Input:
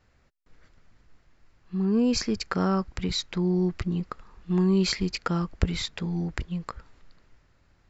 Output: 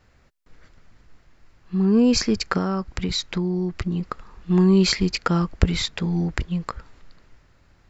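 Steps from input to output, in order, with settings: 2.57–4.03 s: compression, threshold -27 dBFS, peak gain reduction 7 dB; trim +6 dB

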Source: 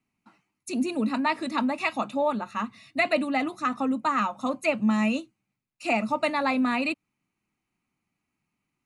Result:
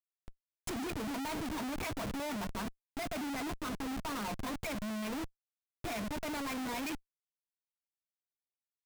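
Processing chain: dynamic bell 6 kHz, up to +4 dB, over -49 dBFS, Q 0.93; reverse; compression 12:1, threshold -32 dBFS, peak gain reduction 14.5 dB; reverse; rippled EQ curve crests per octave 1.7, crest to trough 12 dB; Schmitt trigger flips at -41.5 dBFS

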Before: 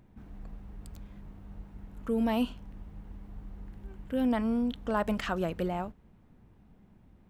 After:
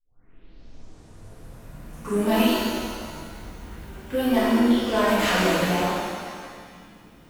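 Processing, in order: tape start-up on the opening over 2.35 s; tilt EQ +2.5 dB/octave; saturation -27.5 dBFS, distortion -13 dB; pitch-shifted reverb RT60 1.8 s, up +7 st, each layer -8 dB, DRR -11.5 dB; trim +2 dB

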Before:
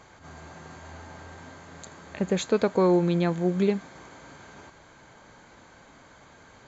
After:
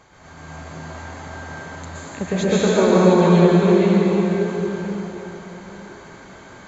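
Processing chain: plate-style reverb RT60 4.3 s, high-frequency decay 0.75×, pre-delay 105 ms, DRR -9.5 dB

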